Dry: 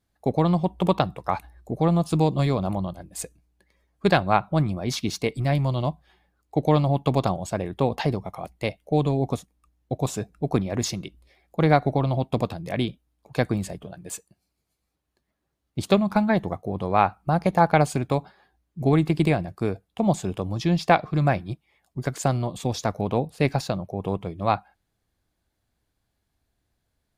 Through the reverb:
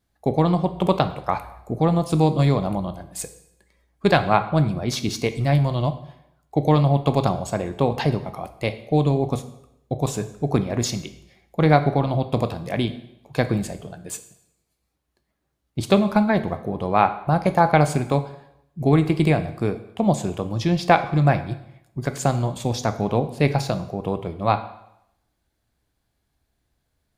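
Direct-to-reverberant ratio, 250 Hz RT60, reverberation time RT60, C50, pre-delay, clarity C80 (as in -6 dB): 9.5 dB, 0.80 s, 0.80 s, 13.0 dB, 6 ms, 15.5 dB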